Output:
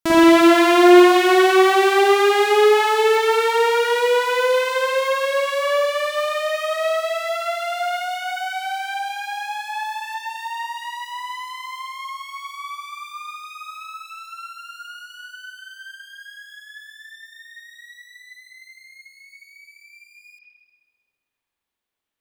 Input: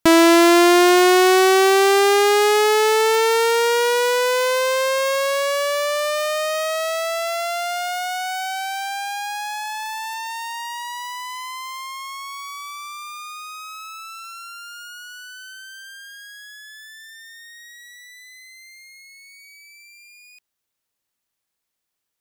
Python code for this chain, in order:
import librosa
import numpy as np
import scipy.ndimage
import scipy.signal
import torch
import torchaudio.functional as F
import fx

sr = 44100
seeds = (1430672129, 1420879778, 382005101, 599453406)

y = fx.low_shelf(x, sr, hz=200.0, db=10.5, at=(15.5, 16.24))
y = fx.rev_spring(y, sr, rt60_s=1.4, pass_ms=(45, 59), chirp_ms=20, drr_db=-7.5)
y = y * 10.0 ** (-8.0 / 20.0)